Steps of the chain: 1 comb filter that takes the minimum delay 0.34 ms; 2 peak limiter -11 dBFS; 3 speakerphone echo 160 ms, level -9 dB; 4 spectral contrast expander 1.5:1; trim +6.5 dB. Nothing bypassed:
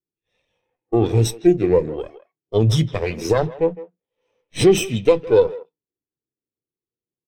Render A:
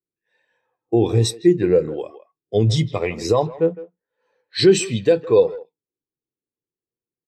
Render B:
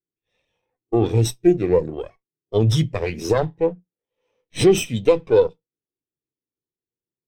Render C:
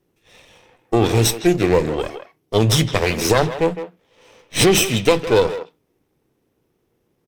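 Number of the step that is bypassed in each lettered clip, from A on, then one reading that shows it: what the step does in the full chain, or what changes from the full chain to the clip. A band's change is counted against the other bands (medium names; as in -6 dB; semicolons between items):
1, 4 kHz band +3.0 dB; 3, momentary loudness spread change -6 LU; 4, 500 Hz band -8.0 dB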